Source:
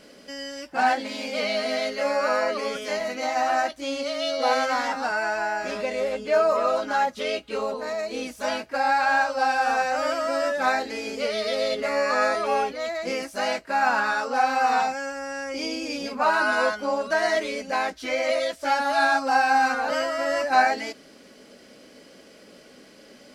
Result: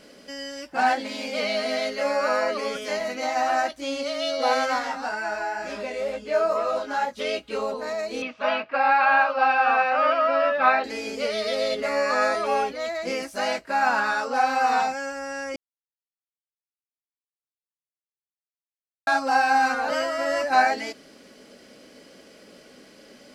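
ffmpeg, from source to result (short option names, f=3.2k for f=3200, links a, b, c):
-filter_complex "[0:a]asplit=3[a][b][c];[a]afade=t=out:st=4.78:d=0.02[d];[b]flanger=delay=17.5:depth=4:speed=2.1,afade=t=in:st=4.78:d=0.02,afade=t=out:st=7.18:d=0.02[e];[c]afade=t=in:st=7.18:d=0.02[f];[d][e][f]amix=inputs=3:normalize=0,asettb=1/sr,asplit=3[g][h][i];[g]atrim=end=8.224[j];[h]atrim=start=8.22:end=10.84,asetpts=PTS-STARTPTS,afade=t=in:d=0.004:c=qsin,afade=t=out:st=2.616:d=0.004:c=qsin,highpass=180,equalizer=f=360:t=q:w=4:g=-7,equalizer=f=650:t=q:w=4:g=4,equalizer=f=1.2k:t=q:w=4:g=10,equalizer=f=2.6k:t=q:w=4:g=8,lowpass=f=3.7k:w=0.5412,lowpass=f=3.7k:w=1.3066[k];[i]atrim=start=10.836[l];[j][k]acrossfade=d=0.004:c1=hsin:c2=qsin[m];[m][l]acrossfade=d=0.004:c1=qsin:c2=hsin,asplit=3[n][o][p];[n]atrim=end=15.56,asetpts=PTS-STARTPTS,afade=t=out:st=15.556:d=0.004:c=hsin[q];[o]atrim=start=15.56:end=19.07,asetpts=PTS-STARTPTS,volume=0[r];[p]atrim=start=19.07,asetpts=PTS-STARTPTS,afade=t=in:d=0.004:c=hsin[s];[q][r][s]concat=n=3:v=0:a=1"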